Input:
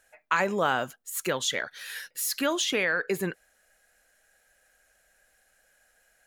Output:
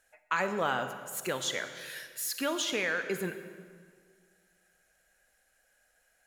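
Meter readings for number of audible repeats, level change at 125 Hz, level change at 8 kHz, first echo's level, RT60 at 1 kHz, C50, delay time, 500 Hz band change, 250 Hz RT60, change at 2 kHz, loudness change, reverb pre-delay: no echo, -4.5 dB, -4.5 dB, no echo, 1.8 s, 9.0 dB, no echo, -4.5 dB, 2.1 s, -4.5 dB, -4.5 dB, 35 ms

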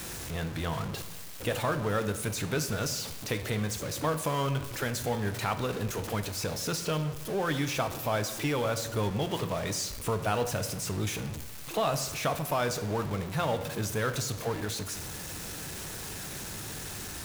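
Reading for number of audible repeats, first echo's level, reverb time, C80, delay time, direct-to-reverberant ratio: no echo, no echo, 1.0 s, 13.0 dB, no echo, 8.5 dB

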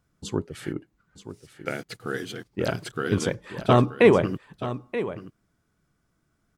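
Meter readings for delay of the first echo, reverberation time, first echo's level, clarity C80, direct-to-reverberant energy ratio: 929 ms, no reverb, -12.5 dB, no reverb, no reverb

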